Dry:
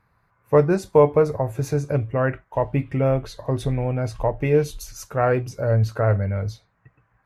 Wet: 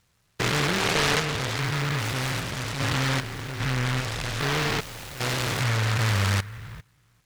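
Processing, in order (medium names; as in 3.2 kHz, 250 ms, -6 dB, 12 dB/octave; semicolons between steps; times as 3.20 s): spectrogram pixelated in time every 400 ms; delay time shaken by noise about 1.5 kHz, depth 0.46 ms; trim -1 dB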